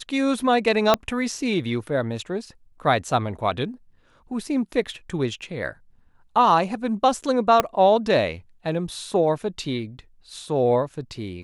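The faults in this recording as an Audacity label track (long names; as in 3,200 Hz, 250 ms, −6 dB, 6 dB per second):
0.940000	0.940000	click −4 dBFS
7.600000	7.600000	click −4 dBFS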